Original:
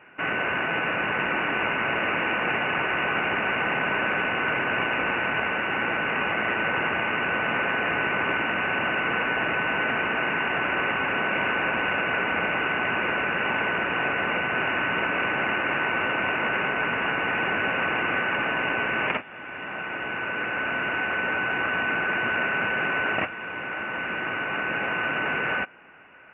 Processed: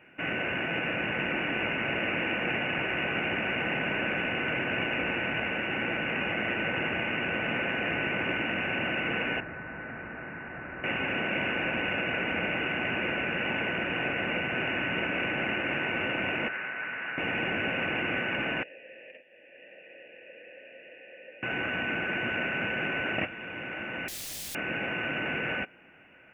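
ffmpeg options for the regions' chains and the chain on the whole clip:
ffmpeg -i in.wav -filter_complex "[0:a]asettb=1/sr,asplit=3[link_01][link_02][link_03];[link_01]atrim=end=9.404[link_04];[link_02]atrim=start=9.4:end=10.84,asetpts=PTS-STARTPTS,afade=type=in:duration=0.004:curve=qsin,afade=type=out:start_time=1.436:duration=0.004:curve=qsin,lowpass=frequency=1600:width=0.5412,lowpass=frequency=1600:width=1.3066,equalizer=frequency=420:width=0.31:gain=-10.5[link_05];[link_03]atrim=start=10.836[link_06];[link_04][link_05]acrossfade=duration=0.004:curve1=hsin:curve2=qsin[link_07];[link_07][link_06]acrossfade=duration=0.004:curve1=qsin:curve2=hsin,asettb=1/sr,asplit=3[link_08][link_09][link_10];[link_08]atrim=end=16.484[link_11];[link_09]atrim=start=16.48:end=17.18,asetpts=PTS-STARTPTS,afade=type=in:duration=0.004:curve=qsin,afade=type=out:start_time=0.696:duration=0.004:curve=qsin,bandpass=frequency=1600:width_type=q:width=1.5,aemphasis=mode=reproduction:type=bsi[link_12];[link_10]atrim=start=17.176[link_13];[link_11][link_12]acrossfade=duration=0.004:curve1=hsin:curve2=qsin[link_14];[link_14][link_13]acrossfade=duration=0.004:curve1=qsin:curve2=hsin,asettb=1/sr,asplit=3[link_15][link_16][link_17];[link_15]atrim=end=18.634[link_18];[link_16]atrim=start=18.63:end=21.43,asetpts=PTS-STARTPTS,afade=type=in:duration=0.004:curve=qsin,afade=type=out:start_time=2.796:duration=0.004:curve=qsin,equalizer=frequency=1400:width=5.9:gain=-11,acompressor=threshold=-31dB:ratio=5:attack=3.2:release=140:knee=1:detection=peak,asplit=3[link_19][link_20][link_21];[link_19]bandpass=frequency=530:width_type=q:width=8,volume=0dB[link_22];[link_20]bandpass=frequency=1840:width_type=q:width=8,volume=-6dB[link_23];[link_21]bandpass=frequency=2480:width_type=q:width=8,volume=-9dB[link_24];[link_22][link_23][link_24]amix=inputs=3:normalize=0[link_25];[link_17]atrim=start=21.426[link_26];[link_18][link_25]acrossfade=duration=0.004:curve1=hsin:curve2=qsin[link_27];[link_27][link_26]acrossfade=duration=0.004:curve1=qsin:curve2=hsin,asettb=1/sr,asplit=3[link_28][link_29][link_30];[link_28]atrim=end=24.084[link_31];[link_29]atrim=start=24.08:end=24.55,asetpts=PTS-STARTPTS,afade=type=in:duration=0.004:curve=qsin,afade=type=out:start_time=0.466:duration=0.004:curve=qsin,equalizer=frequency=190:width_type=o:width=0.6:gain=11,aecho=1:1:2.4:0.48,atrim=end_sample=20727,aeval=exprs='(mod(44.7*val(0)+1,2)-1)/44.7':channel_layout=same[link_32];[link_30]atrim=start=24.546[link_33];[link_31][link_32]acrossfade=duration=0.004:curve1=hsin:curve2=qsin[link_34];[link_34][link_33]acrossfade=duration=0.004:curve1=qsin:curve2=hsin,equalizer=frequency=1100:width_type=o:width=1.1:gain=-12.5,bandreject=frequency=420:width=12" out.wav

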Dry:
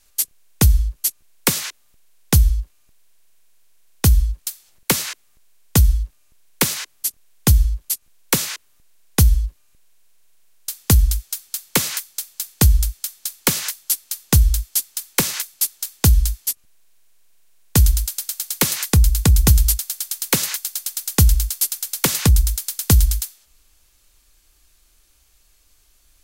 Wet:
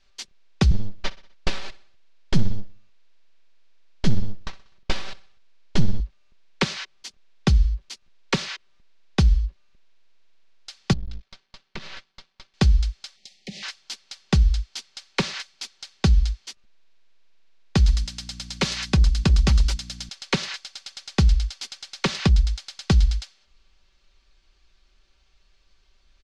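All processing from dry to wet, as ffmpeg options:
ffmpeg -i in.wav -filter_complex "[0:a]asettb=1/sr,asplit=3[link_01][link_02][link_03];[link_01]atrim=end=0.714[link_04];[link_02]atrim=start=0.71:end=6,asetpts=PTS-STARTPTS,afade=type=in:duration=0.004:curve=qsin,afade=type=out:start_time=5.286:duration=0.004:curve=qsin,aeval=exprs='abs(val(0))':channel_layout=same,aecho=1:1:63|126|189|252:0.112|0.0583|0.0303|0.0158,atrim=end_sample=233289[link_05];[link_03]atrim=start=5.996[link_06];[link_04][link_05]acrossfade=duration=0.004:curve1=hsin:curve2=qsin[link_07];[link_07][link_06]acrossfade=duration=0.004:curve1=qsin:curve2=hsin,asettb=1/sr,asplit=3[link_08][link_09][link_10];[link_08]atrim=end=10.934[link_11];[link_09]atrim=start=10.93:end=12.54,asetpts=PTS-STARTPTS,afade=type=in:duration=0.004:curve=qsin,afade=type=out:start_time=1.606:duration=0.004:curve=qsin,lowpass=3900,acompressor=threshold=-26dB:ratio=3:attack=3.2:release=140:knee=1:detection=peak,aeval=exprs='max(val(0),0)':channel_layout=same[link_12];[link_10]atrim=start=12.536[link_13];[link_11][link_12]acrossfade=duration=0.004:curve1=hsin:curve2=qsin[link_14];[link_14][link_13]acrossfade=duration=0.004:curve1=qsin:curve2=hsin,asettb=1/sr,asplit=3[link_15][link_16][link_17];[link_15]atrim=end=13.164[link_18];[link_16]atrim=start=13.16:end=13.63,asetpts=PTS-STARTPTS,afade=type=in:duration=0.004:curve=qsin,afade=type=out:start_time=0.466:duration=0.004:curve=qsin,asuperstop=centerf=1200:order=20:qfactor=1.2,equalizer=frequency=200:width=3.7:gain=9.5,acompressor=threshold=-26dB:ratio=16:attack=3.2:release=140:knee=1:detection=peak[link_19];[link_17]atrim=start=13.626[link_20];[link_18][link_19]acrossfade=duration=0.004:curve1=hsin:curve2=qsin[link_21];[link_21][link_20]acrossfade=duration=0.004:curve1=qsin:curve2=hsin,asettb=1/sr,asplit=3[link_22][link_23][link_24];[link_22]atrim=end=17.874[link_25];[link_23]atrim=start=17.87:end=20.09,asetpts=PTS-STARTPTS,afade=type=in:duration=0.004:curve=qsin,afade=type=out:start_time=2.216:duration=0.004:curve=qsin,equalizer=frequency=12000:width=0.32:gain=7,asoftclip=type=hard:threshold=-7.5dB,aeval=exprs='val(0)+0.0158*(sin(2*PI*60*n/s)+sin(2*PI*2*60*n/s)/2+sin(2*PI*3*60*n/s)/3+sin(2*PI*4*60*n/s)/4+sin(2*PI*5*60*n/s)/5)':channel_layout=same[link_26];[link_24]atrim=start=20.086[link_27];[link_25][link_26]acrossfade=duration=0.004:curve1=hsin:curve2=qsin[link_28];[link_28][link_27]acrossfade=duration=0.004:curve1=qsin:curve2=hsin,lowpass=frequency=4800:width=0.5412,lowpass=frequency=4800:width=1.3066,aecho=1:1:5.2:0.48,volume=-3dB" out.wav

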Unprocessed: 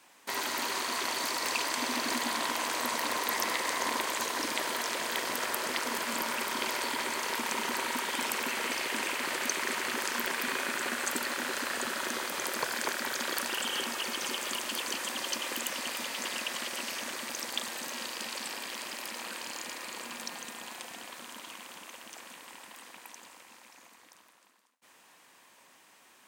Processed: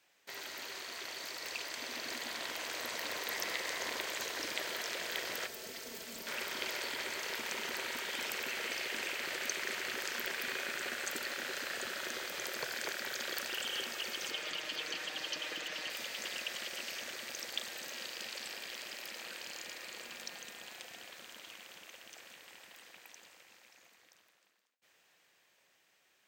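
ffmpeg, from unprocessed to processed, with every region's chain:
ffmpeg -i in.wav -filter_complex "[0:a]asettb=1/sr,asplit=3[link_01][link_02][link_03];[link_01]atrim=end=5.474[link_04];[link_02]atrim=start=5.47:end=6.27,asetpts=PTS-STARTPTS,afade=type=in:duration=0.004:curve=qsin,afade=type=out:start_time=0.796:duration=0.004:curve=qsin,equalizer=frequency=1500:width=0.39:gain=-11.5,aecho=1:1:4.5:0.4,atrim=end_sample=35280,asoftclip=type=hard:threshold=-32.5dB[link_05];[link_03]atrim=start=6.266[link_06];[link_04][link_05]acrossfade=duration=0.004:curve1=hsin:curve2=qsin[link_07];[link_07][link_06]acrossfade=duration=0.004:curve1=qsin:curve2=hsin,asettb=1/sr,asplit=3[link_08][link_09][link_10];[link_08]atrim=end=14.314[link_11];[link_09]atrim=start=14.31:end=15.9,asetpts=PTS-STARTPTS,afade=type=in:duration=0.004:curve=qsin,afade=type=out:start_time=1.586:duration=0.004:curve=qsin,acrossover=split=5600[link_12][link_13];[link_13]acompressor=threshold=-49dB:ratio=4:attack=1:release=60[link_14];[link_12][link_14]amix=inputs=2:normalize=0,aecho=1:1:6.5:0.63,atrim=end_sample=70119[link_15];[link_10]atrim=start=15.896[link_16];[link_11][link_15]acrossfade=duration=0.004:curve1=hsin:curve2=qsin[link_17];[link_17][link_16]acrossfade=duration=0.004:curve1=qsin:curve2=hsin,equalizer=frequency=250:width_type=o:width=0.67:gain=-11,equalizer=frequency=1000:width_type=o:width=0.67:gain=-11,equalizer=frequency=10000:width_type=o:width=0.67:gain=-10,dynaudnorm=framelen=530:gausssize=9:maxgain=5.5dB,volume=-8.5dB" out.wav

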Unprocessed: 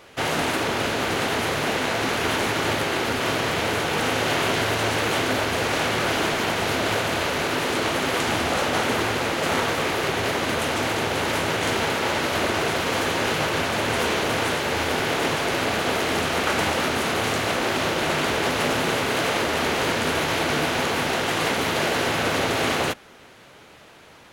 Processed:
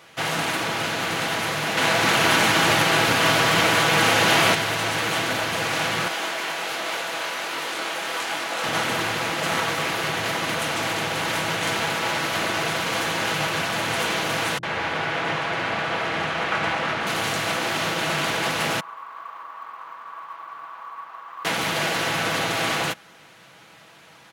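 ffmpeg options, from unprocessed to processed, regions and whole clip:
ffmpeg -i in.wav -filter_complex "[0:a]asettb=1/sr,asplit=3[link_01][link_02][link_03];[link_01]atrim=end=1.774[link_04];[link_02]atrim=start=1.77:end=4.55,asetpts=PTS-STARTPTS,afade=type=in:duration=0.004:curve=qsin,afade=type=out:start_time=2.776:duration=0.004:curve=qsin,acontrast=32,aecho=1:1:298:0.531,atrim=end_sample=122598[link_05];[link_03]atrim=start=4.546[link_06];[link_04][link_05]acrossfade=duration=0.004:curve1=hsin:curve2=qsin[link_07];[link_07][link_06]acrossfade=duration=0.004:curve1=qsin:curve2=hsin,asettb=1/sr,asplit=3[link_08][link_09][link_10];[link_08]atrim=end=6.084[link_11];[link_09]atrim=start=6.08:end=8.64,asetpts=PTS-STARTPTS,afade=type=in:duration=0.004:curve=qsin,afade=type=out:start_time=2.556:duration=0.004:curve=qsin,highpass=350,flanger=delay=20:depth=5.2:speed=1.3[link_12];[link_10]atrim=start=8.636[link_13];[link_11][link_12]acrossfade=duration=0.004:curve1=hsin:curve2=qsin[link_14];[link_14][link_13]acrossfade=duration=0.004:curve1=qsin:curve2=hsin,asettb=1/sr,asplit=3[link_15][link_16][link_17];[link_15]atrim=end=14.584[link_18];[link_16]atrim=start=14.58:end=17.07,asetpts=PTS-STARTPTS,afade=type=in:duration=0.004:curve=qsin,afade=type=out:start_time=2.486:duration=0.004:curve=qsin,lowpass=2000,aemphasis=mode=production:type=75kf,acrossover=split=250[link_19][link_20];[link_20]adelay=50[link_21];[link_19][link_21]amix=inputs=2:normalize=0,atrim=end_sample=109809[link_22];[link_17]atrim=start=17.066[link_23];[link_18][link_22]acrossfade=duration=0.004:curve1=hsin:curve2=qsin[link_24];[link_24][link_23]acrossfade=duration=0.004:curve1=qsin:curve2=hsin,asettb=1/sr,asplit=3[link_25][link_26][link_27];[link_25]atrim=end=18.804[link_28];[link_26]atrim=start=18.8:end=21.45,asetpts=PTS-STARTPTS,afade=type=in:duration=0.004:curve=qsin,afade=type=out:start_time=2.646:duration=0.004:curve=qsin,bandpass=frequency=1100:width_type=q:width=12,acrusher=bits=9:mode=log:mix=0:aa=0.000001[link_29];[link_27]atrim=start=21.446[link_30];[link_28][link_29]acrossfade=duration=0.004:curve1=hsin:curve2=qsin[link_31];[link_31][link_30]acrossfade=duration=0.004:curve1=qsin:curve2=hsin,highpass=110,equalizer=frequency=390:width=1.1:gain=-7,aecho=1:1:6.1:0.39" out.wav

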